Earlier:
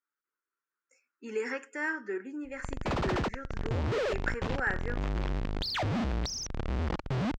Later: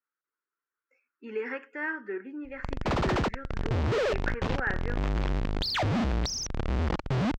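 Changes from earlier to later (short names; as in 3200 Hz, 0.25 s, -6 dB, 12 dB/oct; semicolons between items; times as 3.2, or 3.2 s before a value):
speech: add LPF 3500 Hz 24 dB/oct; background +3.5 dB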